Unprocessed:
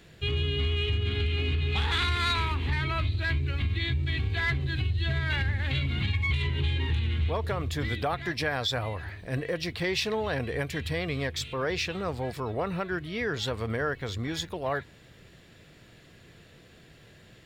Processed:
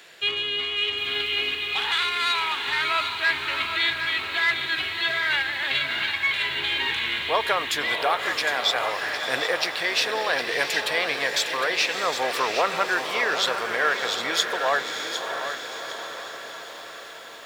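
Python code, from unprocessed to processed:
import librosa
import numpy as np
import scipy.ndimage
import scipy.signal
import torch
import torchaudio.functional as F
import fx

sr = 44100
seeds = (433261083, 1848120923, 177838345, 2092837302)

y = scipy.signal.sosfilt(scipy.signal.butter(2, 720.0, 'highpass', fs=sr, output='sos'), x)
y = fx.rider(y, sr, range_db=5, speed_s=0.5)
y = fx.echo_diffused(y, sr, ms=643, feedback_pct=65, wet_db=-8)
y = fx.echo_crushed(y, sr, ms=758, feedback_pct=35, bits=9, wet_db=-9.0)
y = y * 10.0 ** (8.5 / 20.0)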